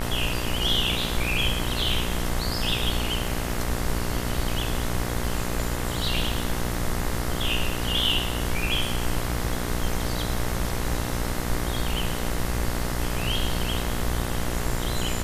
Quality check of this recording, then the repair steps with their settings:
mains buzz 60 Hz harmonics 36 −30 dBFS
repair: hum removal 60 Hz, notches 36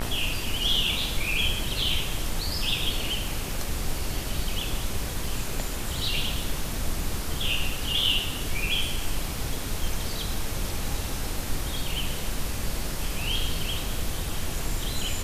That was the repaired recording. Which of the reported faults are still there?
none of them is left

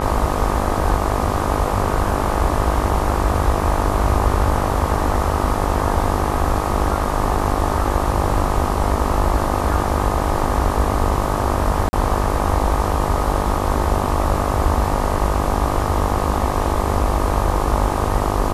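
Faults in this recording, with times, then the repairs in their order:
mains buzz 50 Hz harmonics 25 −23 dBFS
0:11.89–0:11.93: drop-out 40 ms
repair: hum removal 50 Hz, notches 25
repair the gap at 0:11.89, 40 ms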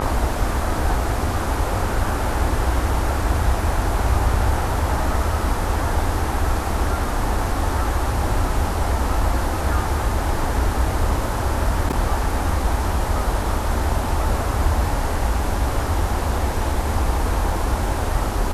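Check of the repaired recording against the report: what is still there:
none of them is left

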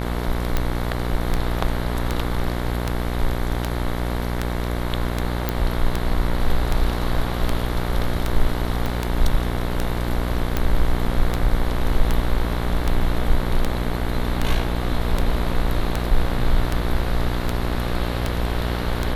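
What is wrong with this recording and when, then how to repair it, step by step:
mains buzz 60 Hz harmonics 38 −25 dBFS
scratch tick 78 rpm −7 dBFS
0:05.49: click
0:08.86: click −12 dBFS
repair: click removal
hum removal 60 Hz, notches 38

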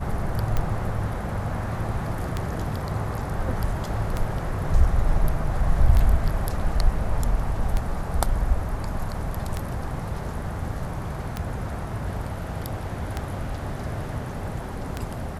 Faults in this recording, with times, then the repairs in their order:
scratch tick 33 1/3 rpm −12 dBFS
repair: click removal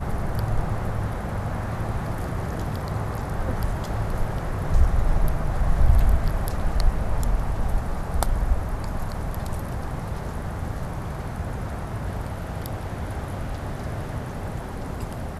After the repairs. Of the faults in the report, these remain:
none of them is left

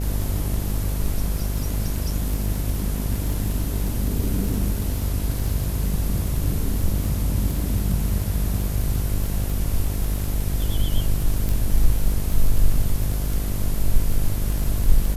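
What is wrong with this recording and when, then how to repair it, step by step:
mains buzz 50 Hz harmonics 14 −25 dBFS
surface crackle 30 per second −26 dBFS
0:11.49: click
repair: click removal
hum removal 50 Hz, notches 14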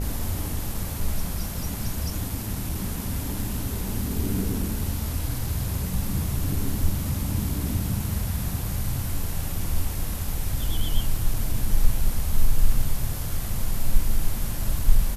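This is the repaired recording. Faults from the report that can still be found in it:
0:11.49: click

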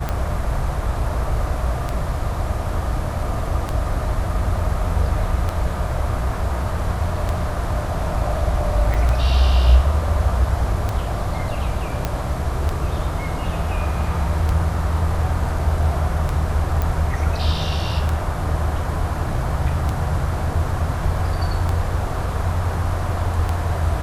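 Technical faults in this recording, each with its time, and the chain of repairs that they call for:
scratch tick 33 1/3 rpm −10 dBFS
0:08.94–0:08.95: drop-out 5 ms
0:12.05: click −8 dBFS
0:16.82: click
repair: click removal
repair the gap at 0:08.94, 5 ms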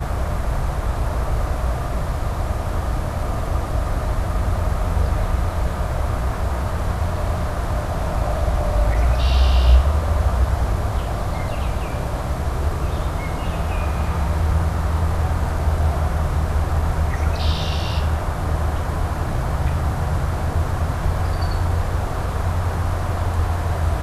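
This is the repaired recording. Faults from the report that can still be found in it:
none of them is left

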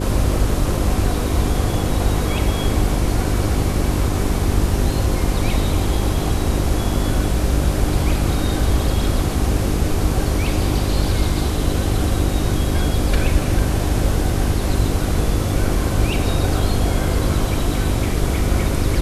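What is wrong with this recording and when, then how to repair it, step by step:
mains hum 50 Hz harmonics 8 −23 dBFS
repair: hum removal 50 Hz, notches 8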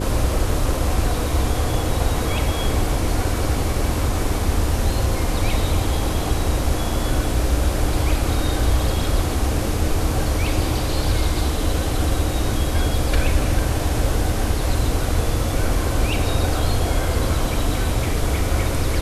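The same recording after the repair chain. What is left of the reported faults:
none of them is left

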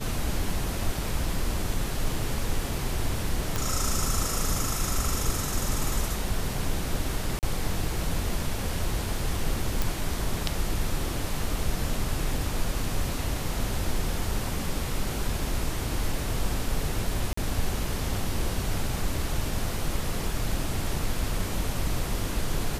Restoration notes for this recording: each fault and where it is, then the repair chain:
0:03.56: click
0:07.39–0:07.43: drop-out 38 ms
0:09.82: click
0:17.33–0:17.37: drop-out 44 ms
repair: click removal
repair the gap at 0:07.39, 38 ms
repair the gap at 0:17.33, 44 ms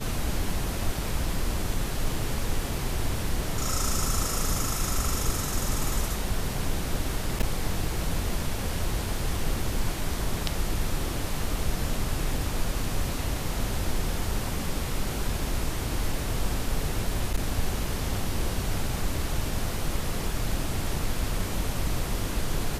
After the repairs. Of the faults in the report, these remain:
none of them is left

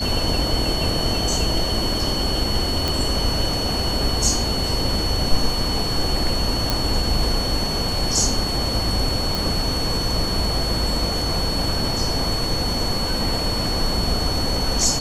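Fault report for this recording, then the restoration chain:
whistle 4,400 Hz −25 dBFS
0:02.88: click
0:06.70: click
0:09.35: click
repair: click removal
notch filter 4,400 Hz, Q 30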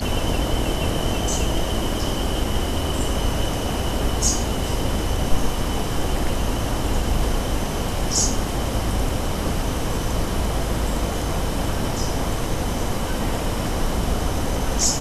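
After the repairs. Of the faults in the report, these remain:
none of them is left

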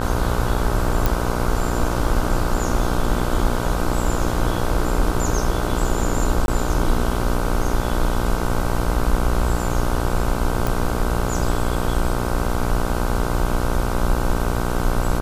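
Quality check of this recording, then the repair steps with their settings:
mains buzz 60 Hz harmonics 26 −24 dBFS
0:01.06: click
0:06.46–0:06.48: drop-out 21 ms
0:10.67: click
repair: click removal
hum removal 60 Hz, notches 26
repair the gap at 0:06.46, 21 ms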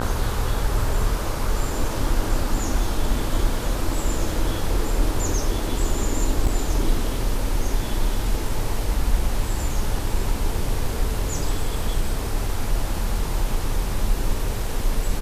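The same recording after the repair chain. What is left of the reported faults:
none of them is left

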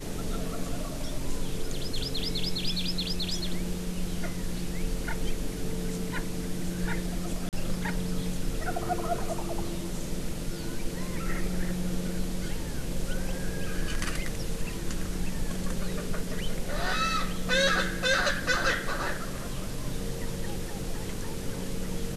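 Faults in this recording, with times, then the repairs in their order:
0:07.49–0:07.53: drop-out 38 ms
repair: repair the gap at 0:07.49, 38 ms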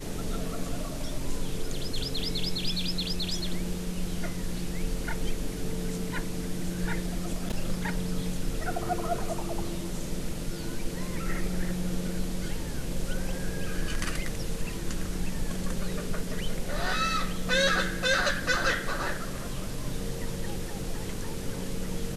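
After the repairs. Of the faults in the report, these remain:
none of them is left

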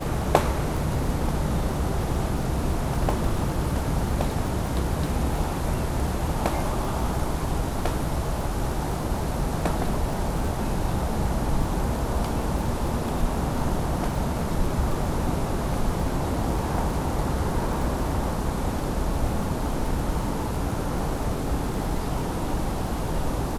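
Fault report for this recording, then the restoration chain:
surface crackle 26 per second −30 dBFS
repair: click removal

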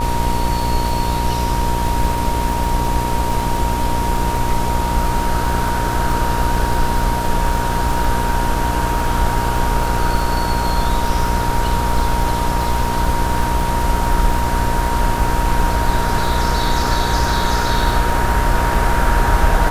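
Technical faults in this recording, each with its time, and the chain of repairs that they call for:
mains buzz 60 Hz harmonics 20 −22 dBFS
surface crackle 59 per second −23 dBFS
whistle 940 Hz −21 dBFS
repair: click removal
hum removal 60 Hz, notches 20
notch filter 940 Hz, Q 30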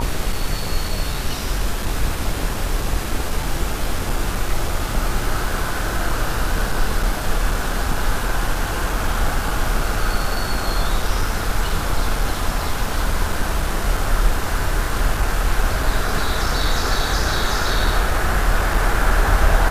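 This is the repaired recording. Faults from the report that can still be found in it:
none of them is left

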